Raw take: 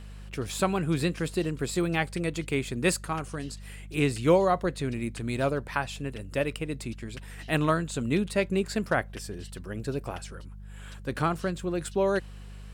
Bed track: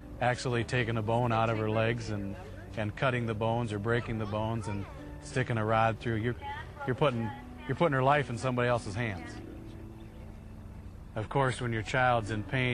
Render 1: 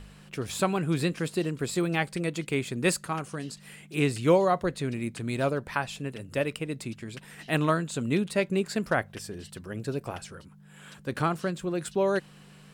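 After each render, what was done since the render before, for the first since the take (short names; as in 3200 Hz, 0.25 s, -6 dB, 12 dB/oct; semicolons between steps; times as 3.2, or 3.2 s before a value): de-hum 50 Hz, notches 2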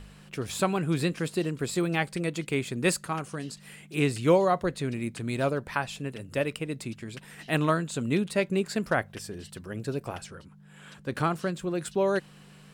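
10.26–11.13 high shelf 9500 Hz -8.5 dB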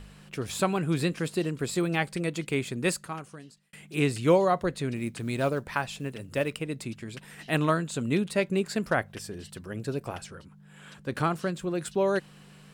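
2.66–3.73 fade out; 4.96–6.62 short-mantissa float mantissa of 4-bit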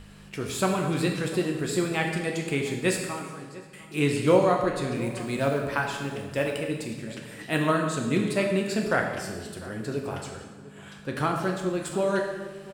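outdoor echo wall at 120 m, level -18 dB; plate-style reverb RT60 1.3 s, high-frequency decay 0.85×, DRR 1 dB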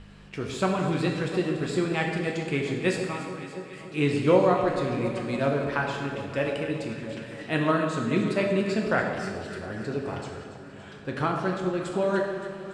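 air absorption 87 m; echo with dull and thin repeats by turns 0.142 s, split 1100 Hz, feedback 81%, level -10.5 dB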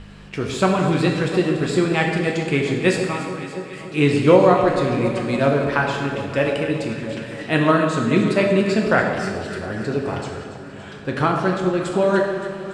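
gain +7.5 dB; limiter -2 dBFS, peak gain reduction 1.5 dB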